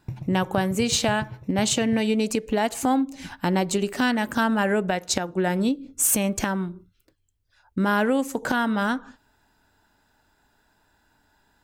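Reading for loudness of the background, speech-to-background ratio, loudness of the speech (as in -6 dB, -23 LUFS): -38.5 LUFS, 14.5 dB, -24.0 LUFS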